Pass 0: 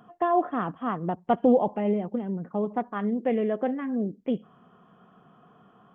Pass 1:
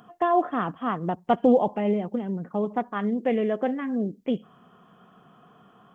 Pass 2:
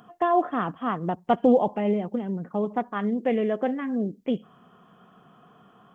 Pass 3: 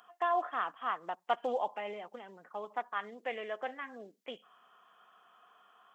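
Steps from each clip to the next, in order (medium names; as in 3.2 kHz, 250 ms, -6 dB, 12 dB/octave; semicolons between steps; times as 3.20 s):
treble shelf 2.7 kHz +8.5 dB; trim +1 dB
no audible change
high-pass 970 Hz 12 dB/octave; trim -2.5 dB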